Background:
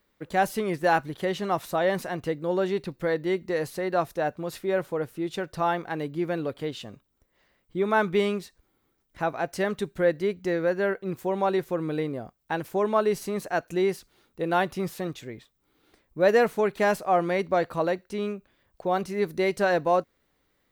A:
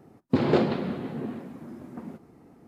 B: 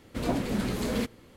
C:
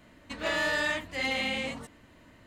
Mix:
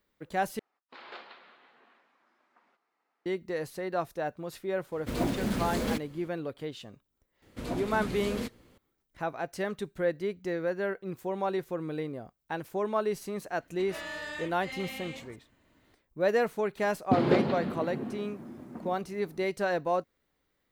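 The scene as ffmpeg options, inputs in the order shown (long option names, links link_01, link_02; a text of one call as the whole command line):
ffmpeg -i bed.wav -i cue0.wav -i cue1.wav -i cue2.wav -filter_complex "[1:a]asplit=2[link_01][link_02];[2:a]asplit=2[link_03][link_04];[0:a]volume=-6dB[link_05];[link_01]asuperpass=centerf=2300:order=4:qfactor=0.61[link_06];[link_03]acrusher=bits=5:mode=log:mix=0:aa=0.000001[link_07];[link_05]asplit=2[link_08][link_09];[link_08]atrim=end=0.594[link_10];[link_06]atrim=end=2.67,asetpts=PTS-STARTPTS,volume=-11dB[link_11];[link_09]atrim=start=3.256[link_12];[link_07]atrim=end=1.36,asetpts=PTS-STARTPTS,volume=-1.5dB,afade=type=in:duration=0.004:curve=hsin,afade=type=out:start_time=1.356:duration=0.004:curve=hsin,adelay=4920[link_13];[link_04]atrim=end=1.36,asetpts=PTS-STARTPTS,volume=-6dB,afade=type=in:duration=0.004:curve=hsin,afade=type=out:start_time=1.356:duration=0.004:curve=hsin,adelay=7420[link_14];[3:a]atrim=end=2.46,asetpts=PTS-STARTPTS,volume=-10.5dB,afade=type=in:duration=0.004:curve=hsin,afade=type=out:start_time=2.456:duration=0.004:curve=hsin,adelay=13490[link_15];[link_02]atrim=end=2.67,asetpts=PTS-STARTPTS,volume=-3dB,afade=type=in:duration=0.004:curve=hsin,afade=type=out:start_time=2.666:duration=0.004:curve=hsin,adelay=16780[link_16];[link_10][link_11]acrossfade=duration=0.004:curve1=hsin:curve2=hsin[link_17];[link_17][link_12]acrossfade=duration=0.004:curve1=hsin:curve2=hsin[link_18];[link_18][link_13][link_14][link_15][link_16]amix=inputs=5:normalize=0" out.wav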